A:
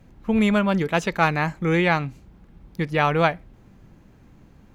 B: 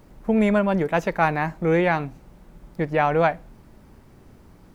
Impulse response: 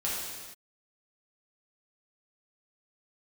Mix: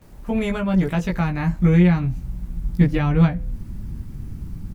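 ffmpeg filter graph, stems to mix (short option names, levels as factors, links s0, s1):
-filter_complex "[0:a]volume=0.75[s0];[1:a]highshelf=f=5300:g=9,alimiter=limit=0.188:level=0:latency=1:release=317,bandreject=f=126.1:t=h:w=4,bandreject=f=252.2:t=h:w=4,bandreject=f=378.3:t=h:w=4,bandreject=f=504.4:t=h:w=4,adelay=17,volume=1.06[s1];[s0][s1]amix=inputs=2:normalize=0,asubboost=boost=12:cutoff=170,acrossover=split=420[s2][s3];[s3]acompressor=threshold=0.0398:ratio=3[s4];[s2][s4]amix=inputs=2:normalize=0"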